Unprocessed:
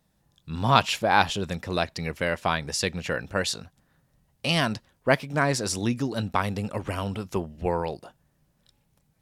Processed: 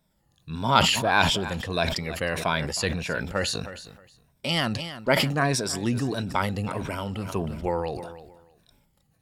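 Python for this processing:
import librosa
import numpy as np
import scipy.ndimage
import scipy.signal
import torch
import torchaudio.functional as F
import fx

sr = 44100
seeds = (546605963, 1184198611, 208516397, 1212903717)

p1 = fx.spec_ripple(x, sr, per_octave=1.6, drift_hz=-1.6, depth_db=9)
p2 = fx.notch(p1, sr, hz=6100.0, q=16.0)
p3 = p2 + fx.echo_feedback(p2, sr, ms=315, feedback_pct=28, wet_db=-18.0, dry=0)
p4 = fx.sustainer(p3, sr, db_per_s=47.0)
y = p4 * 10.0 ** (-2.0 / 20.0)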